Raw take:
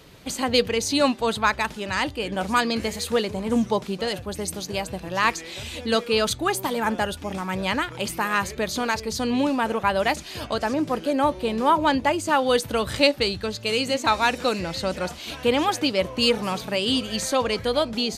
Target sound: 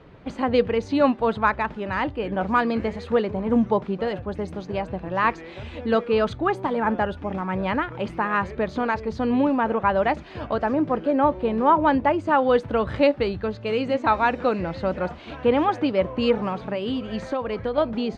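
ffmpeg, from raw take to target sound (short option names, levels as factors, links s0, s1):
-filter_complex "[0:a]lowpass=1600,asettb=1/sr,asplit=3[s0][s1][s2];[s0]atrim=end=16.474[s3];[s1]atrim=start=16.47:end=17.78,asetpts=PTS-STARTPTS,afade=t=in:d=0.004:c=qsin,afade=t=out:st=1.306:d=0.004:c=qsin,acompressor=threshold=0.0562:ratio=6[s4];[s2]atrim=start=17.776[s5];[s3][s4]acrossfade=d=0.004:c1=hsin:c2=qsin[s6];[s6][s5]acrossfade=d=0.004:c1=qsin:c2=hsin,volume=1.26"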